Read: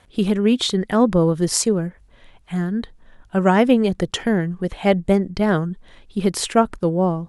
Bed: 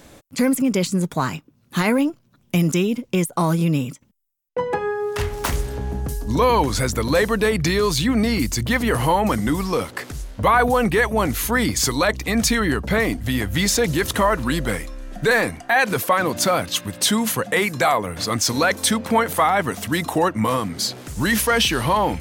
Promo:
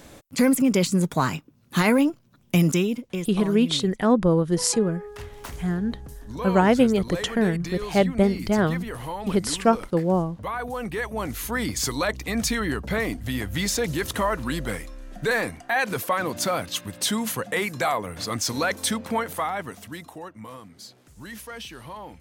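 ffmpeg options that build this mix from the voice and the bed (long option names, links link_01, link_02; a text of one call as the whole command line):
ffmpeg -i stem1.wav -i stem2.wav -filter_complex "[0:a]adelay=3100,volume=-3dB[link_01];[1:a]volume=8dB,afade=type=out:start_time=2.61:duration=0.71:silence=0.199526,afade=type=in:start_time=10.62:duration=1.21:silence=0.375837,afade=type=out:start_time=18.89:duration=1.28:silence=0.199526[link_02];[link_01][link_02]amix=inputs=2:normalize=0" out.wav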